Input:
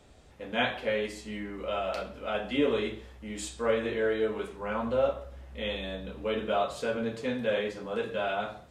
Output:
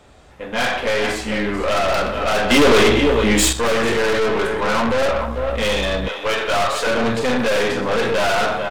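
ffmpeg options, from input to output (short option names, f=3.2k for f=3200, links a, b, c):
-filter_complex "[0:a]equalizer=f=1.2k:t=o:w=1.9:g=6,aecho=1:1:44|123|444:0.266|0.15|0.211,dynaudnorm=f=550:g=3:m=14dB,asettb=1/sr,asplit=3[a][b][c];[a]atrim=end=6.084[d];[b]atrim=start=6.08:end=6.87,asetpts=PTS-STARTPTS,afade=t=in:d=0.004:c=qsin,afade=t=out:st=0.786:d=0.004:c=qsin,highpass=650[e];[c]atrim=start=6.866[f];[d][e]acrossfade=d=0.004:c1=hsin:c2=qsin[g];[g][f]acrossfade=d=0.004:c1=qsin:c2=hsin,aeval=exprs='(tanh(17.8*val(0)+0.5)-tanh(0.5))/17.8':c=same,asettb=1/sr,asplit=3[h][i][j];[h]atrim=end=2.504[k];[i]atrim=start=2.5:end=3.53,asetpts=PTS-STARTPTS,afade=t=in:d=0.004:c=qsin,afade=t=out:st=1.026:d=0.004:c=qsin,acontrast=50[l];[j]atrim=start=3.526[m];[k][l]acrossfade=d=0.004:c1=hsin:c2=qsin[n];[n][m]acrossfade=d=0.004:c1=qsin:c2=hsin,volume=8.5dB"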